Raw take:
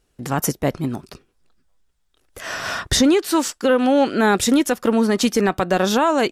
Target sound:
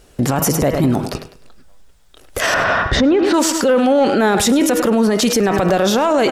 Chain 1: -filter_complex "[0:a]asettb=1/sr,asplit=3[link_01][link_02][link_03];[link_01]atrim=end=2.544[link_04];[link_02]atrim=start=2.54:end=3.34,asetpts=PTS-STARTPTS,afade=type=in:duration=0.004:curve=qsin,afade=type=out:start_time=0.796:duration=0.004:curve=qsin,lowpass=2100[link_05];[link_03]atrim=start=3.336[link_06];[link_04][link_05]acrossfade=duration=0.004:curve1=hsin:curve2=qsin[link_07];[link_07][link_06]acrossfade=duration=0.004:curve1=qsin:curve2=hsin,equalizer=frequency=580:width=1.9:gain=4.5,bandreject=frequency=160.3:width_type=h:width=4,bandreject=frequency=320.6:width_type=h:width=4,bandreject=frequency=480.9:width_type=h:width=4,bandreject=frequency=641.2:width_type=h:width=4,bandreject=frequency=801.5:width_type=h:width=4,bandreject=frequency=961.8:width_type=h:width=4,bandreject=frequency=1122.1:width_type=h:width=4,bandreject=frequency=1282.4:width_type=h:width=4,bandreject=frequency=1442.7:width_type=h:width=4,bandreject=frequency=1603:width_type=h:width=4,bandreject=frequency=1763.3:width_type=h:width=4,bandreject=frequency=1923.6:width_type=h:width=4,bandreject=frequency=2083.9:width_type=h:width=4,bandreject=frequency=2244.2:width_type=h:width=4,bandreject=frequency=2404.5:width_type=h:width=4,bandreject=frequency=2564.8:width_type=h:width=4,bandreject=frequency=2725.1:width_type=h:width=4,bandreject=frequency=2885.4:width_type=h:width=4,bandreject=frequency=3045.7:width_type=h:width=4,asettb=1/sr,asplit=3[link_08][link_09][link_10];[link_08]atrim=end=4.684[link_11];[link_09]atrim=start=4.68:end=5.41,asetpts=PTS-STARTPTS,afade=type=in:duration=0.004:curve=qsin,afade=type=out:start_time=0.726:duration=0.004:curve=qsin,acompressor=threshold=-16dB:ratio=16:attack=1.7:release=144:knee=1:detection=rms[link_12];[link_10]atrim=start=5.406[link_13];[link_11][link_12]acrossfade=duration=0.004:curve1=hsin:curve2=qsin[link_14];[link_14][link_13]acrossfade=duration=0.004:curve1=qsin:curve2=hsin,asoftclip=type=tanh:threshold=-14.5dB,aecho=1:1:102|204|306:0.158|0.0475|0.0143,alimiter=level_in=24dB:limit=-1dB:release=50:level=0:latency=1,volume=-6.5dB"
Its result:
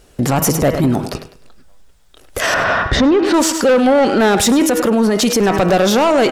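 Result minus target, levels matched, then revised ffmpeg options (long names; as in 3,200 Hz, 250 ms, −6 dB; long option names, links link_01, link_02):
soft clipping: distortion +13 dB
-filter_complex "[0:a]asettb=1/sr,asplit=3[link_01][link_02][link_03];[link_01]atrim=end=2.544[link_04];[link_02]atrim=start=2.54:end=3.34,asetpts=PTS-STARTPTS,afade=type=in:duration=0.004:curve=qsin,afade=type=out:start_time=0.796:duration=0.004:curve=qsin,lowpass=2100[link_05];[link_03]atrim=start=3.336[link_06];[link_04][link_05]acrossfade=duration=0.004:curve1=hsin:curve2=qsin[link_07];[link_07][link_06]acrossfade=duration=0.004:curve1=qsin:curve2=hsin,equalizer=frequency=580:width=1.9:gain=4.5,bandreject=frequency=160.3:width_type=h:width=4,bandreject=frequency=320.6:width_type=h:width=4,bandreject=frequency=480.9:width_type=h:width=4,bandreject=frequency=641.2:width_type=h:width=4,bandreject=frequency=801.5:width_type=h:width=4,bandreject=frequency=961.8:width_type=h:width=4,bandreject=frequency=1122.1:width_type=h:width=4,bandreject=frequency=1282.4:width_type=h:width=4,bandreject=frequency=1442.7:width_type=h:width=4,bandreject=frequency=1603:width_type=h:width=4,bandreject=frequency=1763.3:width_type=h:width=4,bandreject=frequency=1923.6:width_type=h:width=4,bandreject=frequency=2083.9:width_type=h:width=4,bandreject=frequency=2244.2:width_type=h:width=4,bandreject=frequency=2404.5:width_type=h:width=4,bandreject=frequency=2564.8:width_type=h:width=4,bandreject=frequency=2725.1:width_type=h:width=4,bandreject=frequency=2885.4:width_type=h:width=4,bandreject=frequency=3045.7:width_type=h:width=4,asettb=1/sr,asplit=3[link_08][link_09][link_10];[link_08]atrim=end=4.684[link_11];[link_09]atrim=start=4.68:end=5.41,asetpts=PTS-STARTPTS,afade=type=in:duration=0.004:curve=qsin,afade=type=out:start_time=0.726:duration=0.004:curve=qsin,acompressor=threshold=-16dB:ratio=16:attack=1.7:release=144:knee=1:detection=rms[link_12];[link_10]atrim=start=5.406[link_13];[link_11][link_12]acrossfade=duration=0.004:curve1=hsin:curve2=qsin[link_14];[link_14][link_13]acrossfade=duration=0.004:curve1=qsin:curve2=hsin,asoftclip=type=tanh:threshold=-5dB,aecho=1:1:102|204|306:0.158|0.0475|0.0143,alimiter=level_in=24dB:limit=-1dB:release=50:level=0:latency=1,volume=-6.5dB"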